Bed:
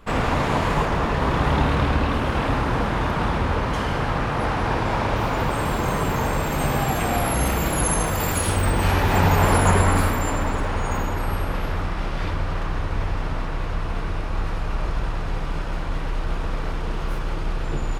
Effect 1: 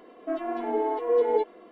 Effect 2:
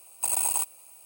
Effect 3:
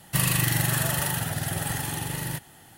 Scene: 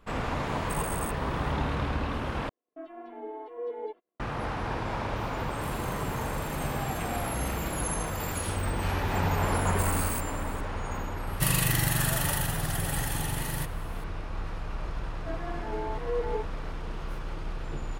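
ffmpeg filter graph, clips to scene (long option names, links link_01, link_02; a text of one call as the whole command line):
ffmpeg -i bed.wav -i cue0.wav -i cue1.wav -i cue2.wav -filter_complex "[2:a]asplit=2[link_01][link_02];[1:a]asplit=2[link_03][link_04];[3:a]asplit=2[link_05][link_06];[0:a]volume=-9.5dB[link_07];[link_03]agate=range=-27dB:threshold=-46dB:ratio=16:release=100:detection=peak[link_08];[link_05]alimiter=limit=-18dB:level=0:latency=1:release=28[link_09];[link_02]volume=32.5dB,asoftclip=hard,volume=-32.5dB[link_10];[link_04]lowpass=frequency=1800:width_type=q:width=2.9[link_11];[link_07]asplit=2[link_12][link_13];[link_12]atrim=end=2.494[link_14];[link_08]atrim=end=1.71,asetpts=PTS-STARTPTS,volume=-13dB[link_15];[link_13]atrim=start=4.196[link_16];[link_01]atrim=end=1.05,asetpts=PTS-STARTPTS,volume=-13.5dB,afade=type=in:duration=0.004:curve=hsin,afade=type=out:start_time=1.046:duration=0.004:curve=hsin,adelay=470[link_17];[link_09]atrim=end=2.77,asetpts=PTS-STARTPTS,volume=-17.5dB,afade=type=in:duration=0.004:curve=hsin,afade=type=out:start_time=2.766:duration=0.004:curve=hsin,adelay=5480[link_18];[link_10]atrim=end=1.05,asetpts=PTS-STARTPTS,volume=-0.5dB,afade=type=in:duration=0.004:curve=hsin,afade=type=out:start_time=1.046:duration=0.004:curve=hsin,adelay=9560[link_19];[link_06]atrim=end=2.77,asetpts=PTS-STARTPTS,volume=-2.5dB,afade=type=in:duration=0.004:curve=hsin,afade=type=out:start_time=2.766:duration=0.004:curve=hsin,adelay=11270[link_20];[link_11]atrim=end=1.71,asetpts=PTS-STARTPTS,volume=-9.5dB,afade=type=in:duration=0.004:curve=hsin,afade=type=out:start_time=1.706:duration=0.004:curve=hsin,adelay=14990[link_21];[link_14][link_15]acrossfade=duration=0.004:curve1=hsin:curve2=hsin[link_22];[link_22][link_16]acrossfade=duration=0.004:curve1=hsin:curve2=hsin[link_23];[link_23][link_17][link_18][link_19][link_20][link_21]amix=inputs=6:normalize=0" out.wav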